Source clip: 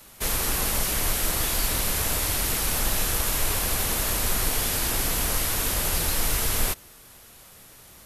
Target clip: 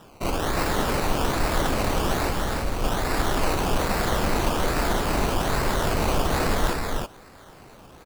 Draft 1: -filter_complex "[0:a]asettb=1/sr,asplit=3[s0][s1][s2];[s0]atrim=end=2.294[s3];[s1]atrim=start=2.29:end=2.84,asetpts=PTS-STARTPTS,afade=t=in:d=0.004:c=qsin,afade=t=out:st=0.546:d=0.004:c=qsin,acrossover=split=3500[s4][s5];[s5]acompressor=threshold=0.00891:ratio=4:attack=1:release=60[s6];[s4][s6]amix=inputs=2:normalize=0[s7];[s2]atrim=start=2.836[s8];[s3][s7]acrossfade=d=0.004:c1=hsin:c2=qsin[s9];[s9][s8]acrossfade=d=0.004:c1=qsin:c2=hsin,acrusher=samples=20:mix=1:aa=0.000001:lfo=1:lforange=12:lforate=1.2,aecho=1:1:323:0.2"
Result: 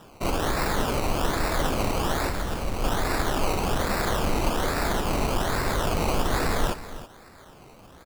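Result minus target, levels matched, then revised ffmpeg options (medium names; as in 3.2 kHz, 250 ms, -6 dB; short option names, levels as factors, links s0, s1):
echo-to-direct -11 dB
-filter_complex "[0:a]asettb=1/sr,asplit=3[s0][s1][s2];[s0]atrim=end=2.294[s3];[s1]atrim=start=2.29:end=2.84,asetpts=PTS-STARTPTS,afade=t=in:d=0.004:c=qsin,afade=t=out:st=0.546:d=0.004:c=qsin,acrossover=split=3500[s4][s5];[s5]acompressor=threshold=0.00891:ratio=4:attack=1:release=60[s6];[s4][s6]amix=inputs=2:normalize=0[s7];[s2]atrim=start=2.836[s8];[s3][s7]acrossfade=d=0.004:c1=hsin:c2=qsin[s9];[s9][s8]acrossfade=d=0.004:c1=qsin:c2=hsin,acrusher=samples=20:mix=1:aa=0.000001:lfo=1:lforange=12:lforate=1.2,aecho=1:1:323:0.708"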